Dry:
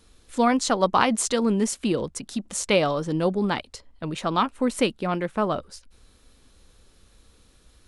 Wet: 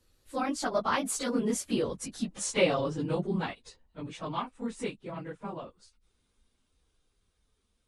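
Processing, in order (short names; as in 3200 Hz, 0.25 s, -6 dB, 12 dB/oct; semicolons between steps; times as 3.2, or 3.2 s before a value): phase scrambler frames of 50 ms; Doppler pass-by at 2.14, 31 m/s, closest 30 m; gain -4 dB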